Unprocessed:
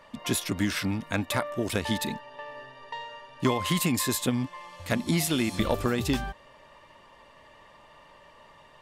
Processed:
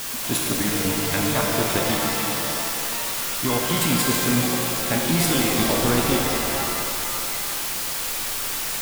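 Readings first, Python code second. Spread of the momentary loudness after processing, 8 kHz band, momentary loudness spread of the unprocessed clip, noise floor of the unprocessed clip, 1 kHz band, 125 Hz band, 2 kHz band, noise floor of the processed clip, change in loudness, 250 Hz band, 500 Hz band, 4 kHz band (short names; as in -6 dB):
5 LU, +12.0 dB, 15 LU, -55 dBFS, +8.0 dB, +4.5 dB, +8.0 dB, -27 dBFS, +7.0 dB, +4.5 dB, +6.5 dB, +9.5 dB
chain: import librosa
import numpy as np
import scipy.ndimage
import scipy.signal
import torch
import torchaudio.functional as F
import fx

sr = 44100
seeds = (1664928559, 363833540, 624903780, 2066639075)

y = fx.level_steps(x, sr, step_db=14)
y = fx.quant_dither(y, sr, seeds[0], bits=6, dither='triangular')
y = fx.rev_shimmer(y, sr, seeds[1], rt60_s=2.4, semitones=7, shimmer_db=-2, drr_db=-0.5)
y = y * librosa.db_to_amplitude(4.5)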